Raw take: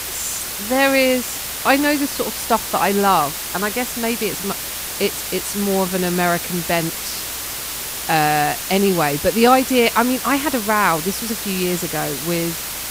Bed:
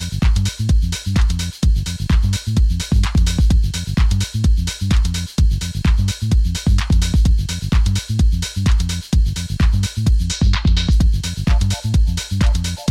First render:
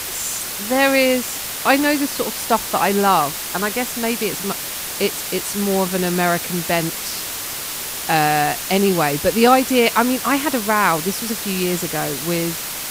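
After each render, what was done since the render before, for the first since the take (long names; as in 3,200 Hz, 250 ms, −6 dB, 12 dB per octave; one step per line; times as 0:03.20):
hum removal 60 Hz, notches 2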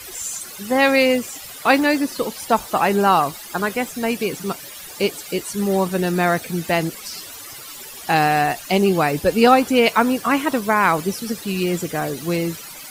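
broadband denoise 15 dB, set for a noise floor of −28 dBFS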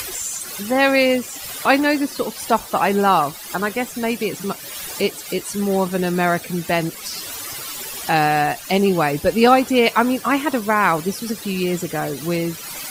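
upward compression, threshold −22 dBFS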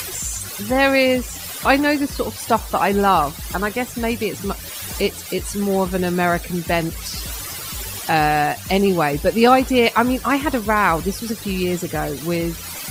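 mix in bed −20 dB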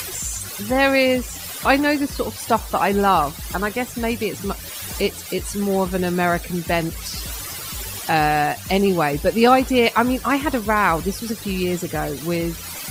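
level −1 dB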